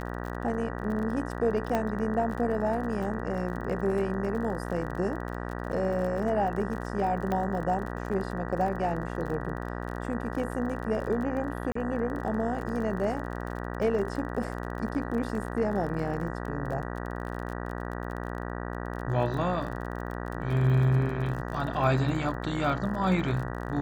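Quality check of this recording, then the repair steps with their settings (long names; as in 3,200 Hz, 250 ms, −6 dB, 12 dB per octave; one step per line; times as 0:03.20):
mains buzz 60 Hz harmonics 32 −35 dBFS
surface crackle 33 per second −35 dBFS
0:01.75: click −15 dBFS
0:07.32: click −18 dBFS
0:11.72–0:11.75: drop-out 34 ms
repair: click removal
hum removal 60 Hz, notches 32
repair the gap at 0:11.72, 34 ms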